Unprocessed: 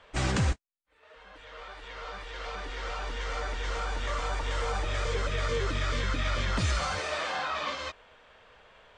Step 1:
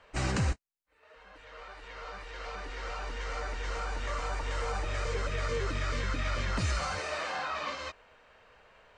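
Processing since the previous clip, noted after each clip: band-stop 3.4 kHz, Q 6.9; trim -2.5 dB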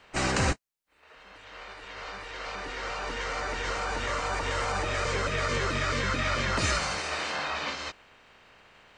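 spectral peaks clipped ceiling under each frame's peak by 13 dB; trim +3 dB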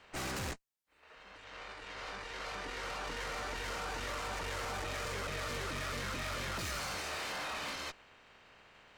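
valve stage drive 37 dB, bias 0.7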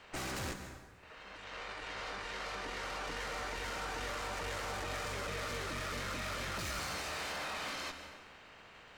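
compression, threshold -42 dBFS, peak gain reduction 5 dB; plate-style reverb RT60 1.5 s, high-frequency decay 0.65×, pre-delay 115 ms, DRR 7.5 dB; trim +3.5 dB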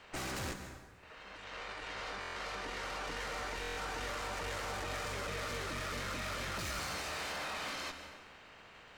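buffer glitch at 2.20/3.61 s, samples 1024, times 6

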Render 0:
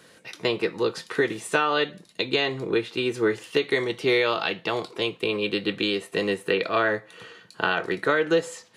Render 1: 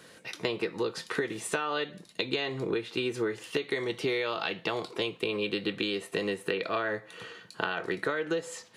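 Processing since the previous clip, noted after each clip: compression, threshold -27 dBFS, peak gain reduction 10.5 dB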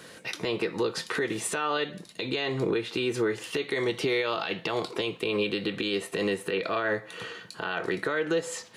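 peak limiter -23.5 dBFS, peak gain reduction 11.5 dB; trim +5.5 dB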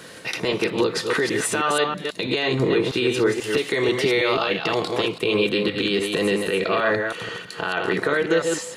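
chunks repeated in reverse 162 ms, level -4 dB; trim +6 dB

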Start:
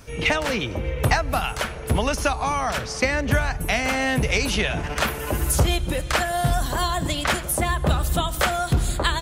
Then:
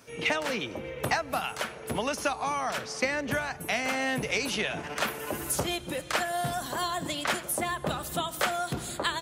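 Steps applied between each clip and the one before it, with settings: high-pass 190 Hz 12 dB/octave; trim -6 dB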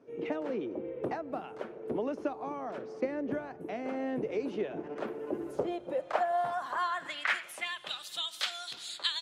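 band-pass sweep 360 Hz -> 3.9 kHz, 5.41–8.07 s; trim +4.5 dB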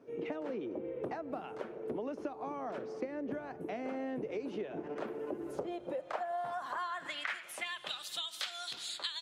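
compression 4:1, threshold -37 dBFS, peak gain reduction 11.5 dB; trim +1 dB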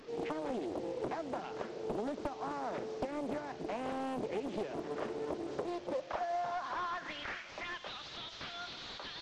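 one-bit delta coder 32 kbps, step -49.5 dBFS; loudspeaker Doppler distortion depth 0.97 ms; trim +1.5 dB

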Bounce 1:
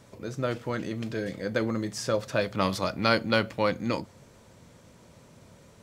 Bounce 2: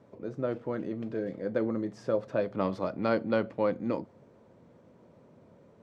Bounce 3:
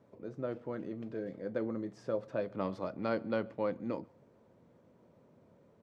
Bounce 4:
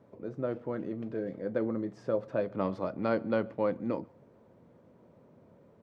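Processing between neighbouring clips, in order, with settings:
band-pass filter 380 Hz, Q 0.71
echo from a far wall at 23 m, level -27 dB; trim -6 dB
treble shelf 3.3 kHz -7.5 dB; trim +4.5 dB

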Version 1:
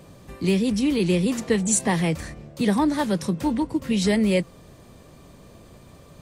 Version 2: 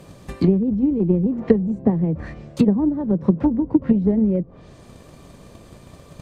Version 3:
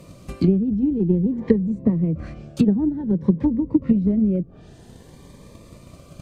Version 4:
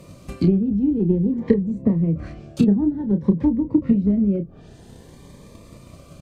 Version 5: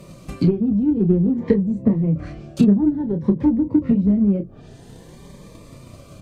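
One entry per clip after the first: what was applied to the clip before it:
low-pass that closes with the level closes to 400 Hz, closed at -19.5 dBFS; transient shaper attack +8 dB, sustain +1 dB; trim +2.5 dB
dynamic bell 770 Hz, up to -6 dB, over -35 dBFS, Q 1.1; Shepard-style phaser rising 0.52 Hz
doubling 30 ms -9 dB
flange 0.38 Hz, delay 4.9 ms, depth 6.8 ms, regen -39%; in parallel at -12 dB: saturation -24 dBFS, distortion -8 dB; on the sum: trim +4 dB

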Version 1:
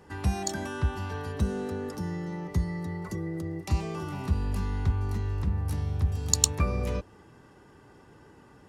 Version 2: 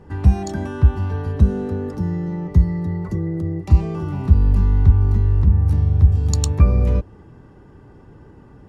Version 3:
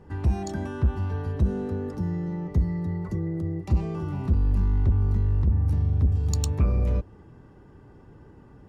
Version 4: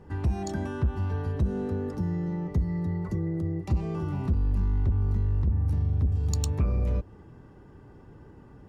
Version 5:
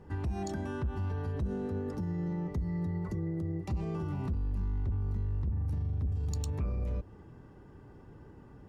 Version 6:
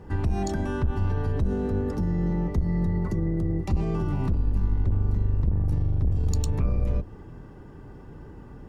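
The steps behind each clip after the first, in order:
tilt EQ -3 dB/octave; trim +3 dB
saturation -10 dBFS, distortion -12 dB; trim -5 dB
compression 2:1, threshold -24 dBFS, peak gain reduction 4 dB
peak limiter -25 dBFS, peak gain reduction 7 dB; trim -2.5 dB
octave divider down 2 oct, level -3 dB; trim +7.5 dB

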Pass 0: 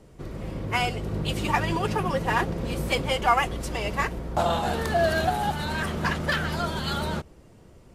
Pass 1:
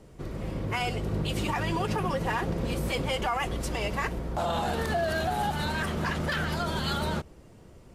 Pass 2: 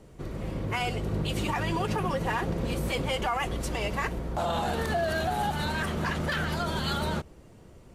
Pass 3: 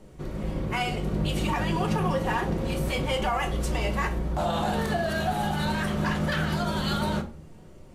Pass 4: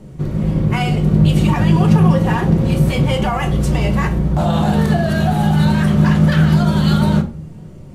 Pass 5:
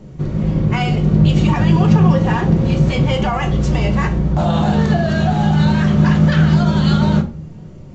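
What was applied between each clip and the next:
peak limiter -20 dBFS, peak gain reduction 11 dB
band-stop 5.1 kHz, Q 25
simulated room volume 280 m³, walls furnished, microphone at 1 m
peaking EQ 140 Hz +13 dB 1.7 oct; trim +5.5 dB
resampled via 16 kHz

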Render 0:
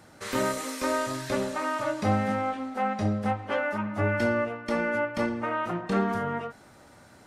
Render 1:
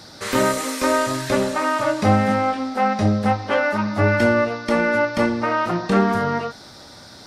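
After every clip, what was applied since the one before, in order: band noise 3.5–5.7 kHz -55 dBFS; trim +8.5 dB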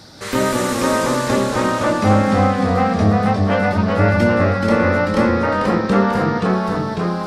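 bass shelf 280 Hz +5 dB; ever faster or slower copies 177 ms, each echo -1 st, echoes 3; trim -1 dB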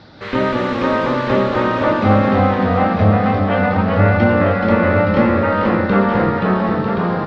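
low-pass 3.6 kHz 24 dB/octave; delay 947 ms -6.5 dB; trim +1 dB; MP3 112 kbps 44.1 kHz

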